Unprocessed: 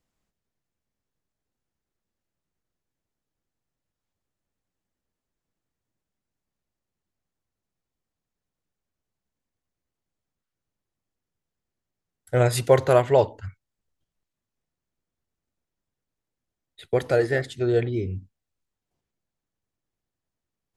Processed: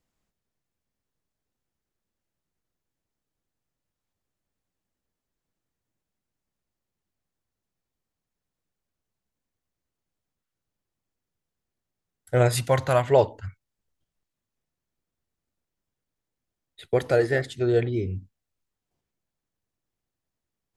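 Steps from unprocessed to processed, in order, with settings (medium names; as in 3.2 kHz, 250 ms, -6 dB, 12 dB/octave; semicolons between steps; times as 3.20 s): 12.55–13.08 s: peaking EQ 410 Hz -13 dB 0.68 oct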